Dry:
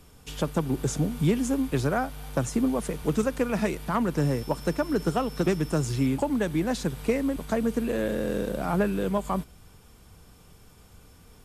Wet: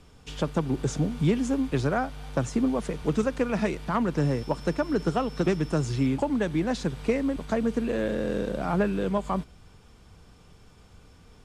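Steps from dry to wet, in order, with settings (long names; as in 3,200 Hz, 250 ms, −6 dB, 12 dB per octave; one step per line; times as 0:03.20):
low-pass filter 6,300 Hz 12 dB per octave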